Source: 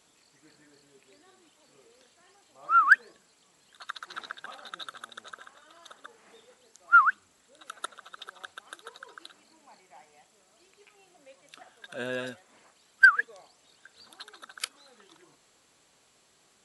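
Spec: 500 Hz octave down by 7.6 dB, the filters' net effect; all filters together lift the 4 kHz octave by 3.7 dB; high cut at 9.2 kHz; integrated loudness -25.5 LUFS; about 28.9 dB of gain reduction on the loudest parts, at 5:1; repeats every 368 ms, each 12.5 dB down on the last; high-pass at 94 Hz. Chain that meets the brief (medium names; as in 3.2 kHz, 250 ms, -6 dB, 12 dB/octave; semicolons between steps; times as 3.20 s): high-pass 94 Hz; low-pass 9.2 kHz; peaking EQ 500 Hz -9 dB; peaking EQ 4 kHz +4.5 dB; compression 5:1, threshold -47 dBFS; feedback delay 368 ms, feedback 24%, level -12.5 dB; trim +26.5 dB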